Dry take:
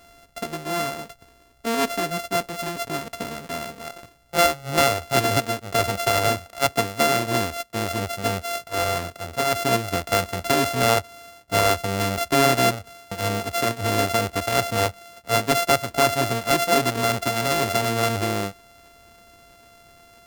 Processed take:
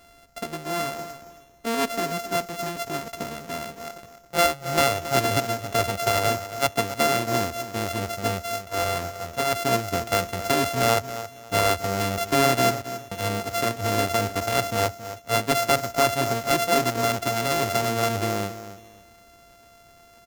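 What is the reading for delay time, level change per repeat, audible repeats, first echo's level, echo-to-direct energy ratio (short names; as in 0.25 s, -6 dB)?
0.273 s, -11.5 dB, 2, -13.0 dB, -12.5 dB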